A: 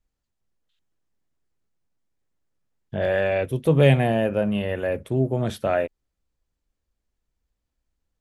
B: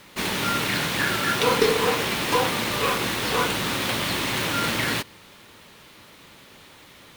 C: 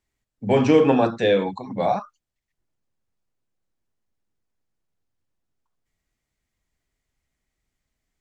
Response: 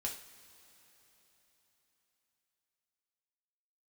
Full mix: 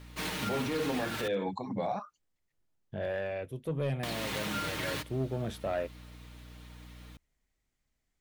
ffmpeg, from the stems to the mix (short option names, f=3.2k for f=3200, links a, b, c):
-filter_complex "[0:a]dynaudnorm=f=200:g=9:m=12dB,asoftclip=type=tanh:threshold=-7dB,volume=-17dB[a];[1:a]aecho=1:1:6.5:0.67,aeval=exprs='val(0)+0.0126*(sin(2*PI*60*n/s)+sin(2*PI*2*60*n/s)/2+sin(2*PI*3*60*n/s)/3+sin(2*PI*4*60*n/s)/4+sin(2*PI*5*60*n/s)/5)':c=same,volume=-10.5dB,asplit=3[b][c][d];[b]atrim=end=1.28,asetpts=PTS-STARTPTS,afade=t=out:st=1.276:d=0.004:c=hsin[e];[c]atrim=start=1.28:end=4.03,asetpts=PTS-STARTPTS,volume=0[f];[d]atrim=start=4.03,asetpts=PTS-STARTPTS,afade=t=in:d=0.004:c=hsin[g];[e][f][g]concat=n=3:v=0:a=1[h];[2:a]asoftclip=type=hard:threshold=-11dB,acompressor=threshold=-20dB:ratio=6,volume=-3.5dB[i];[a][h][i]amix=inputs=3:normalize=0,alimiter=limit=-23.5dB:level=0:latency=1:release=199"